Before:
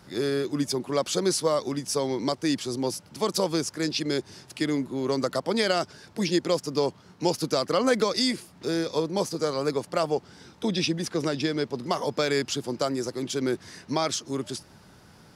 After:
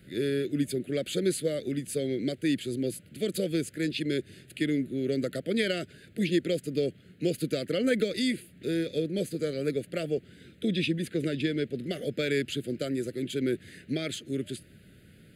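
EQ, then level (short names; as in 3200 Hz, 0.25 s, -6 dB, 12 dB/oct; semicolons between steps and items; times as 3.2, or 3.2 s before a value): Butterworth band-stop 940 Hz, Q 1.1; fixed phaser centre 2400 Hz, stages 4; 0.0 dB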